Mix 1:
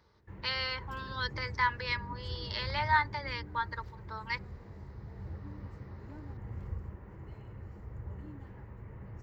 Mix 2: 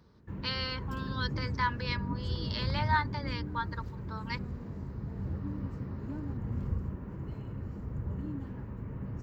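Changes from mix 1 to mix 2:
background +5.0 dB
master: add thirty-one-band graphic EQ 160 Hz +11 dB, 250 Hz +12 dB, 800 Hz −4 dB, 2,000 Hz −7 dB

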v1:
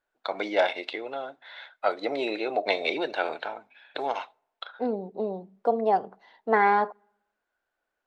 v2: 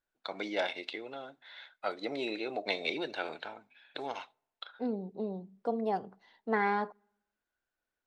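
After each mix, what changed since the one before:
master: add drawn EQ curve 170 Hz 0 dB, 660 Hz −11 dB, 6,100 Hz −2 dB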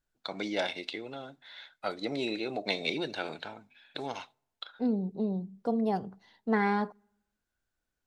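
master: add bass and treble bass +12 dB, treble +8 dB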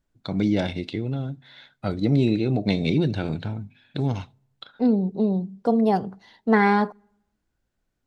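first voice: remove high-pass filter 620 Hz 12 dB per octave
second voice +9.0 dB

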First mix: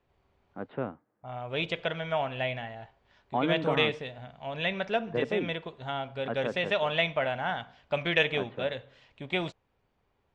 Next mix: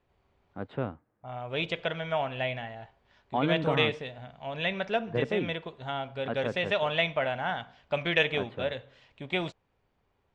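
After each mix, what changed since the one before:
first voice: remove band-pass filter 160–2,600 Hz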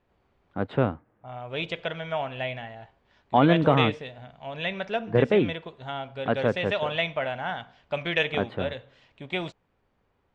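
first voice +9.0 dB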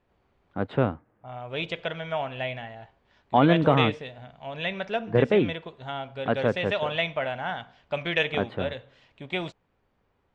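nothing changed

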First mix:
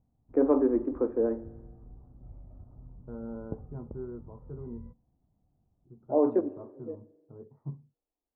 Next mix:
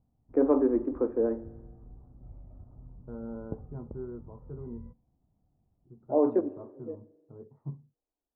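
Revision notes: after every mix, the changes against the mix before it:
nothing changed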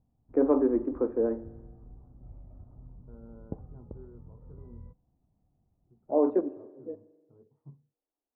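second voice −11.5 dB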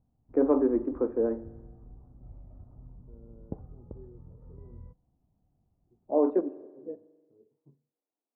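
second voice: add resonant band-pass 360 Hz, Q 1.8

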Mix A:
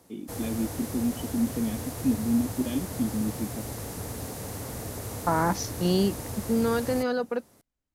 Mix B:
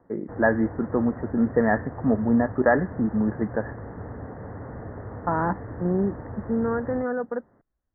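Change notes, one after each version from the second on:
first voice: remove formant resonators in series i
master: add Butterworth low-pass 1,900 Hz 96 dB per octave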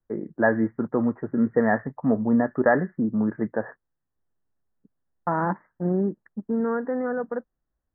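background: muted

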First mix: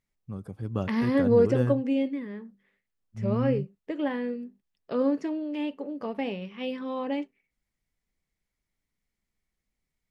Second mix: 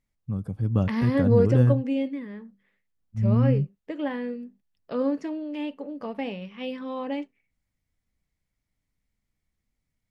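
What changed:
first voice: add low-shelf EQ 300 Hz +10.5 dB
master: add parametric band 380 Hz −5.5 dB 0.27 octaves

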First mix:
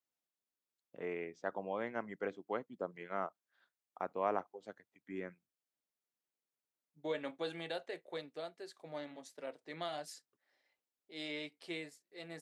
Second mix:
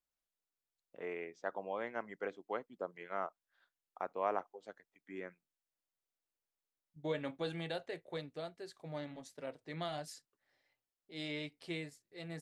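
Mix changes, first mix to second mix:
first voice: add high-pass filter 390 Hz
master: remove high-pass filter 270 Hz 12 dB per octave

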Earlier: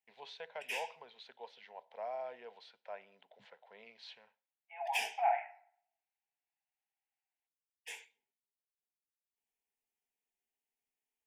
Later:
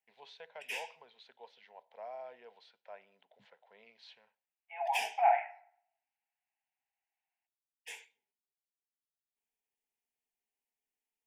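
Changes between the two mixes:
first voice −4.0 dB
second voice +4.5 dB

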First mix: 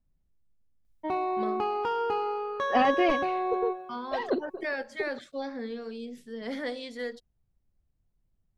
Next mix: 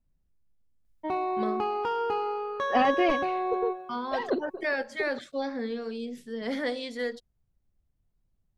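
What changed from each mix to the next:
first voice +3.5 dB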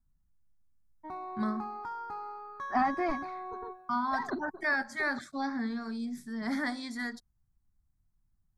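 first voice +4.5 dB
background −7.0 dB
master: add phaser with its sweep stopped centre 1,200 Hz, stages 4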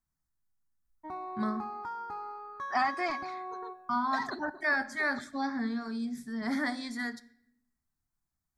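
second voice: add spectral tilt +4.5 dB per octave
reverb: on, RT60 0.70 s

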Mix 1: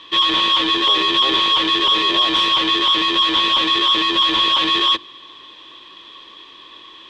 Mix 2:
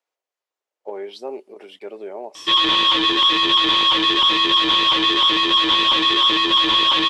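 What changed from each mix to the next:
background: entry +2.35 s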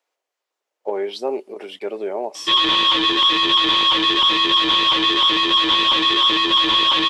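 speech +7.0 dB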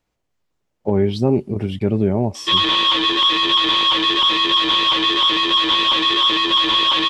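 speech: remove high-pass filter 440 Hz 24 dB per octave

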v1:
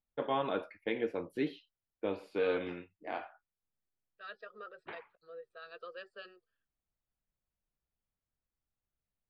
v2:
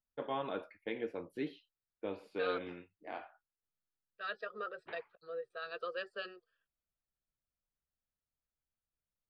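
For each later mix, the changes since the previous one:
first voice −5.0 dB
second voice +6.5 dB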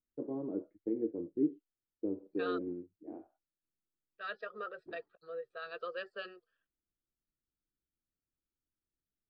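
first voice: add low-pass with resonance 330 Hz, resonance Q 3.6
master: add high-frequency loss of the air 95 metres

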